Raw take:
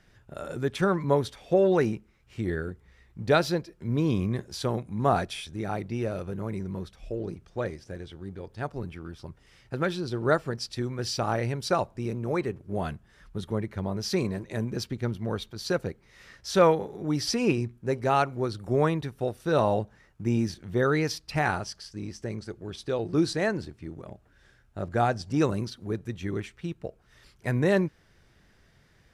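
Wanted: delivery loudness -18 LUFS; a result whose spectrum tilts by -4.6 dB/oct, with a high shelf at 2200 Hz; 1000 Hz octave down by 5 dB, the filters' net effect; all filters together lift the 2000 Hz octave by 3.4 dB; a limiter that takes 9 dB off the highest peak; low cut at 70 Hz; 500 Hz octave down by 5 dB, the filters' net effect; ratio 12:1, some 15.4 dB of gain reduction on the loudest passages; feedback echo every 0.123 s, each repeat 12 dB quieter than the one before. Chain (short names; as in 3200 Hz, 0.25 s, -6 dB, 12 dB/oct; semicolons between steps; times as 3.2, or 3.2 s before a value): HPF 70 Hz; bell 500 Hz -5 dB; bell 1000 Hz -8.5 dB; bell 2000 Hz +3.5 dB; high shelf 2200 Hz +8.5 dB; compressor 12:1, threshold -34 dBFS; limiter -30 dBFS; feedback echo 0.123 s, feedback 25%, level -12 dB; gain +23 dB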